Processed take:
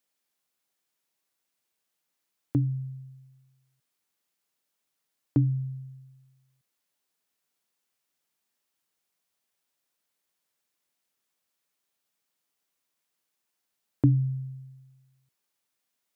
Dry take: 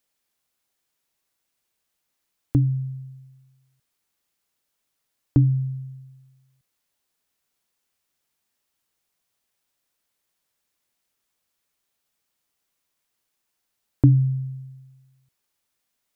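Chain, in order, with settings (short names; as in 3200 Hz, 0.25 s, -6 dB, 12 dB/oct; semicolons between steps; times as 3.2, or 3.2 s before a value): HPF 130 Hz 12 dB/oct; gain -3.5 dB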